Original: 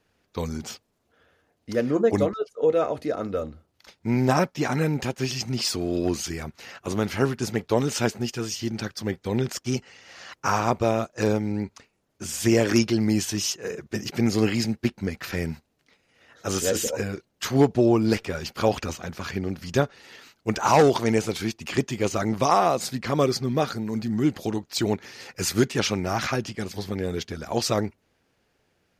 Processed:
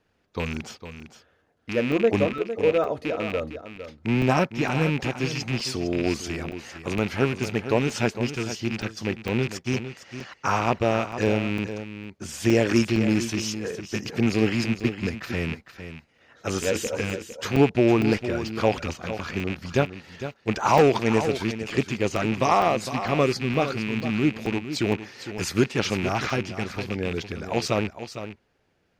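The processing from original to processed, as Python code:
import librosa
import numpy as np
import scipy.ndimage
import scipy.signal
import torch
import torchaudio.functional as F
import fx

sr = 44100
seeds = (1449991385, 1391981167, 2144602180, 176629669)

p1 = fx.rattle_buzz(x, sr, strikes_db=-32.0, level_db=-19.0)
p2 = fx.lowpass(p1, sr, hz=3900.0, slope=6)
p3 = p2 + fx.echo_single(p2, sr, ms=456, db=-11.0, dry=0)
y = fx.buffer_crackle(p3, sr, first_s=0.54, period_s=0.46, block=128, kind='zero')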